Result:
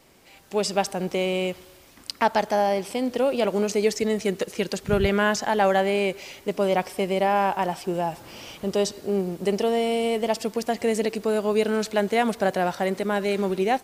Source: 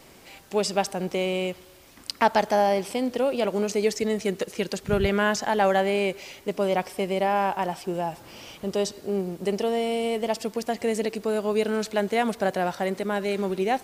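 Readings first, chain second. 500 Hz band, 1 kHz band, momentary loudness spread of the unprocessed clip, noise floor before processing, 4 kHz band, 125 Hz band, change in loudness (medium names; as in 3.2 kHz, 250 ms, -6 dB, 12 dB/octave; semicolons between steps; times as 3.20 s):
+1.5 dB, +1.0 dB, 8 LU, -51 dBFS, +1.5 dB, +1.5 dB, +1.5 dB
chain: level rider gain up to 8.5 dB; trim -6 dB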